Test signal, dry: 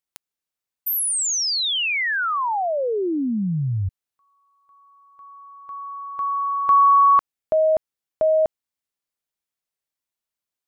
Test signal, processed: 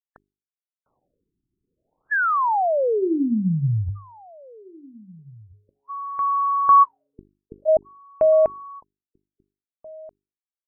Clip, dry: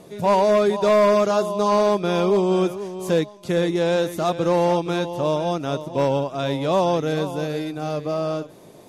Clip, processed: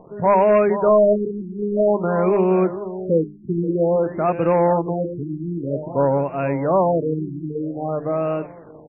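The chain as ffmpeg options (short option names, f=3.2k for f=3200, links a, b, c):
-filter_complex "[0:a]aeval=exprs='val(0)*gte(abs(val(0)),0.00631)':c=same,bandreject=f=50:t=h:w=6,bandreject=f=100:t=h:w=6,bandreject=f=150:t=h:w=6,bandreject=f=200:t=h:w=6,bandreject=f=250:t=h:w=6,bandreject=f=300:t=h:w=6,bandreject=f=350:t=h:w=6,bandreject=f=400:t=h:w=6,asplit=2[a][b];[b]adelay=1633,volume=-23dB,highshelf=f=4k:g=-36.7[c];[a][c]amix=inputs=2:normalize=0,afftfilt=real='re*lt(b*sr/1024,380*pow(2900/380,0.5+0.5*sin(2*PI*0.51*pts/sr)))':imag='im*lt(b*sr/1024,380*pow(2900/380,0.5+0.5*sin(2*PI*0.51*pts/sr)))':win_size=1024:overlap=0.75,volume=2.5dB"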